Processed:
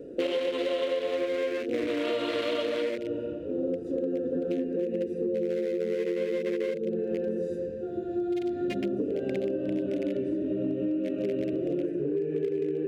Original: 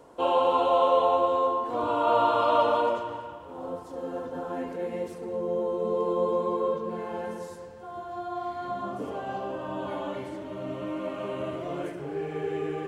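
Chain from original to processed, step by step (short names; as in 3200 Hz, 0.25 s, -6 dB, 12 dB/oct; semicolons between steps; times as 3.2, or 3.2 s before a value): Wiener smoothing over 41 samples; EQ curve 110 Hz 0 dB, 350 Hz +12 dB, 540 Hz +8 dB, 850 Hz -16 dB, 2100 Hz +14 dB; compressor 16:1, threshold -31 dBFS, peak gain reduction 19.5 dB; gain +5.5 dB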